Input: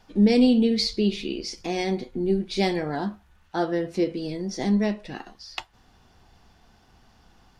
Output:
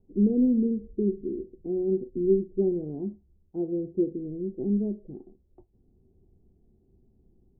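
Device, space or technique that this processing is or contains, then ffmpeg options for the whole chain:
under water: -af "lowpass=f=410:w=0.5412,lowpass=f=410:w=1.3066,equalizer=f=380:t=o:w=0.21:g=9.5,volume=0.631"

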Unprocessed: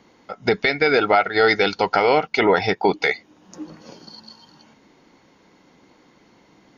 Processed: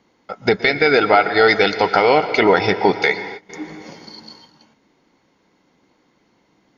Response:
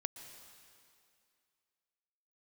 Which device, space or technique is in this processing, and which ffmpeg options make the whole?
keyed gated reverb: -filter_complex "[0:a]asplit=3[s0][s1][s2];[1:a]atrim=start_sample=2205[s3];[s1][s3]afir=irnorm=-1:irlink=0[s4];[s2]apad=whole_len=298973[s5];[s4][s5]sidechaingate=range=0.0224:threshold=0.00398:ratio=16:detection=peak,volume=2.51[s6];[s0][s6]amix=inputs=2:normalize=0,volume=0.473"

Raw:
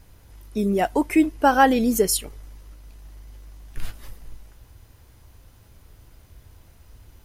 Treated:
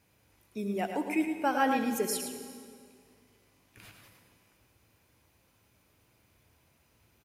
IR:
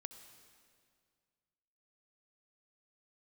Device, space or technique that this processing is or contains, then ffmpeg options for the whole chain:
PA in a hall: -filter_complex "[0:a]highpass=140,equalizer=f=2400:t=o:w=0.28:g=8,aecho=1:1:109:0.422[s0];[1:a]atrim=start_sample=2205[s1];[s0][s1]afir=irnorm=-1:irlink=0,volume=0.473"

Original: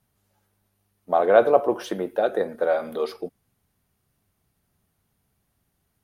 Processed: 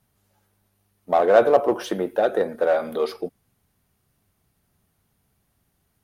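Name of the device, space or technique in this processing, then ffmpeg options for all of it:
parallel distortion: -filter_complex "[0:a]asplit=2[s0][s1];[s1]asoftclip=type=hard:threshold=0.112,volume=0.562[s2];[s0][s2]amix=inputs=2:normalize=0,volume=0.891"

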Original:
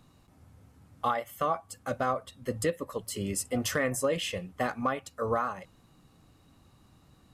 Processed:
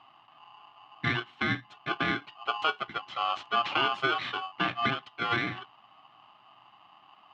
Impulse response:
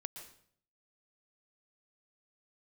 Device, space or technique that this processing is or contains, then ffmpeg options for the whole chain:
ring modulator pedal into a guitar cabinet: -filter_complex "[0:a]aeval=exprs='val(0)*sgn(sin(2*PI*940*n/s))':c=same,highpass=110,equalizer=f=120:t=q:w=4:g=9,equalizer=f=300:t=q:w=4:g=5,equalizer=f=480:t=q:w=4:g=-9,equalizer=f=760:t=q:w=4:g=5,equalizer=f=1200:t=q:w=4:g=9,equalizer=f=3000:t=q:w=4:g=9,lowpass=f=3600:w=0.5412,lowpass=f=3600:w=1.3066,asettb=1/sr,asplit=3[s0][s1][s2];[s0]atrim=end=2.964[s3];[s1]atrim=start=2.96:end=3.86,asetpts=PTS-STARTPTS,afade=t=in:d=0.004:c=qsin,afade=t=out:st=0.896:d=0.004:c=qsin,lowpass=f=7700:w=0.5412,lowpass=f=7700:w=1.3066[s4];[s2]atrim=start=3.856[s5];[s3][s4]acrossfade=d=0.004:c1=hsin:c2=qsin[s6];[s6][s5]acrossfade=d=0.004:c1=qsin:c2=hsin,volume=0.794"

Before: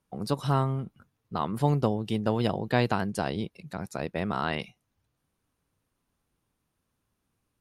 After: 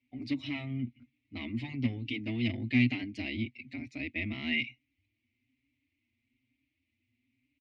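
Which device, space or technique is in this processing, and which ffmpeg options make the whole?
barber-pole flanger into a guitar amplifier: -filter_complex "[0:a]asplit=2[s0][s1];[s1]adelay=5.3,afreqshift=1.1[s2];[s0][s2]amix=inputs=2:normalize=1,asoftclip=type=tanh:threshold=0.0631,highpass=83,equalizer=f=130:t=q:w=4:g=10,equalizer=f=180:t=q:w=4:g=-9,equalizer=f=630:t=q:w=4:g=9,lowpass=f=3700:w=0.5412,lowpass=f=3700:w=1.3066,firequalizer=gain_entry='entry(110,0);entry(160,-24);entry(250,12);entry(440,-21);entry(1500,-23);entry(2100,14);entry(3400,1);entry(6500,7)':delay=0.05:min_phase=1,volume=1.19"

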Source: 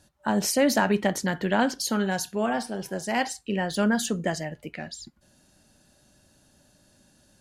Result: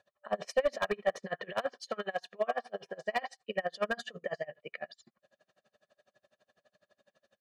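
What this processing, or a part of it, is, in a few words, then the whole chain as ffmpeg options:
helicopter radio: -filter_complex "[0:a]highpass=380,lowpass=2600,aeval=exprs='val(0)*pow(10,-31*(0.5-0.5*cos(2*PI*12*n/s))/20)':c=same,asoftclip=type=hard:threshold=0.0668,asettb=1/sr,asplit=3[s0][s1][s2];[s0]atrim=end=1.524[s3];[s1]atrim=start=1.52:end=2.63,asetpts=PTS-STARTPTS,afade=t=in:d=0.004:c=qsin,afade=t=out:st=1.106:d=0.004:c=qsin,highpass=f=250:p=1[s4];[s2]atrim=start=2.626[s5];[s3][s4]acrossfade=d=0.004:c1=hsin:c2=qsin[s6];[s6][s5]acrossfade=d=0.004:c1=qsin:c2=hsin,aecho=1:1:1.7:0.8"

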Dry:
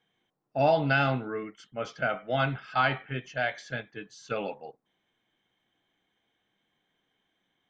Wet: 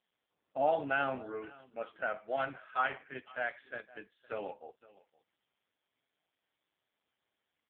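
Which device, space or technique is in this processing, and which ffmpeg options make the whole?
satellite phone: -af "highpass=310,lowpass=3400,aecho=1:1:512:0.0841,volume=0.596" -ar 8000 -c:a libopencore_amrnb -b:a 5150

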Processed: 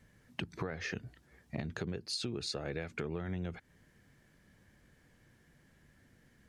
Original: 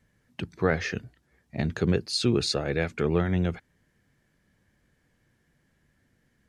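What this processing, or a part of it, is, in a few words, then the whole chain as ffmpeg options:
serial compression, peaks first: -af "acompressor=threshold=0.02:ratio=5,acompressor=threshold=0.01:ratio=2.5,volume=1.5"

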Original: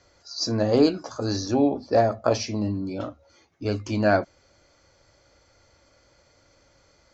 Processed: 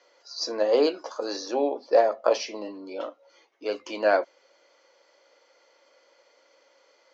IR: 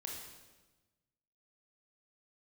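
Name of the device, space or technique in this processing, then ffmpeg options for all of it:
phone speaker on a table: -af "highpass=f=350:w=0.5412,highpass=f=350:w=1.3066,equalizer=f=510:t=q:w=4:g=7,equalizer=f=980:t=q:w=4:g=6,equalizer=f=2000:t=q:w=4:g=4,equalizer=f=3000:t=q:w=4:g=7,lowpass=f=6600:w=0.5412,lowpass=f=6600:w=1.3066,volume=0.708"

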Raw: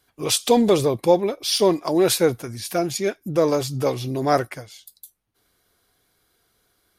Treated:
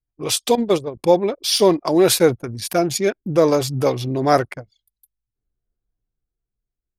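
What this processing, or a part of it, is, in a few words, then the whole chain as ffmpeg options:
voice memo with heavy noise removal: -filter_complex "[0:a]asettb=1/sr,asplit=3[s0][s1][s2];[s0]atrim=end=0.554[s3];[s1]atrim=start=0.55:end=0.97,asetpts=PTS-STARTPTS,afade=t=in:d=0.004:c=qsin,afade=t=out:st=0.416:d=0.004:c=qsin,agate=range=0.282:threshold=0.158:ratio=16:detection=peak[s4];[s2]atrim=start=0.966[s5];[s3][s4]acrossfade=d=0.004:c1=hsin:c2=qsin[s6];[s6][s5]acrossfade=d=0.004:c1=qsin:c2=hsin,anlmdn=10,dynaudnorm=f=250:g=9:m=2.82"

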